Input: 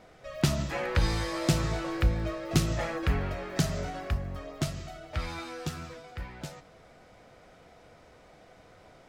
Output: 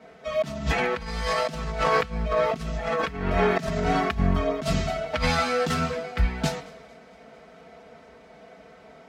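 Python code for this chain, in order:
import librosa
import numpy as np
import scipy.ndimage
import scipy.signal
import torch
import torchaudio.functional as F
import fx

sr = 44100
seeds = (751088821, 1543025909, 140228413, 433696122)

y = scipy.signal.sosfilt(scipy.signal.butter(4, 51.0, 'highpass', fs=sr, output='sos'), x)
y = fx.high_shelf(y, sr, hz=6200.0, db=-11.0)
y = y + 0.99 * np.pad(y, (int(4.5 * sr / 1000.0), 0))[:len(y)]
y = fx.over_compress(y, sr, threshold_db=-35.0, ratio=-1.0)
y = fx.echo_wet_highpass(y, sr, ms=225, feedback_pct=78, hz=1900.0, wet_db=-20.5)
y = fx.band_widen(y, sr, depth_pct=70)
y = y * librosa.db_to_amplitude(9.0)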